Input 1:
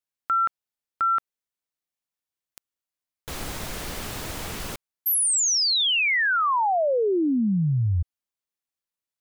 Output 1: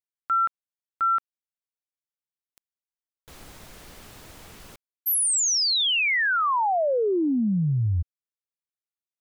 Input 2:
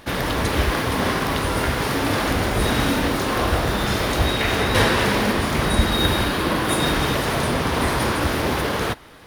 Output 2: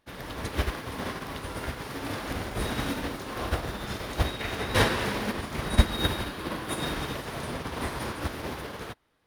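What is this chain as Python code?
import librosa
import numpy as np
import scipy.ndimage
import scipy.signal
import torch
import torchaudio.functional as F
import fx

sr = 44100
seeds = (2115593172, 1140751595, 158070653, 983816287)

y = fx.upward_expand(x, sr, threshold_db=-30.0, expansion=2.5)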